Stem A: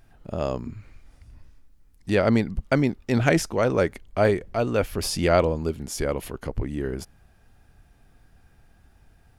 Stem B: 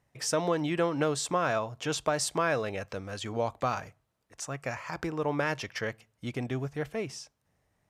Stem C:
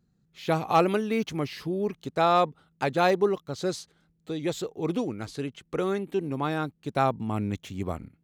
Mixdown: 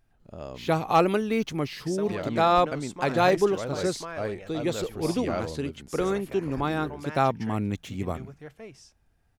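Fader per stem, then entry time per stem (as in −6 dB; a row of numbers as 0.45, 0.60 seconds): −12.0, −10.0, +1.0 decibels; 0.00, 1.65, 0.20 seconds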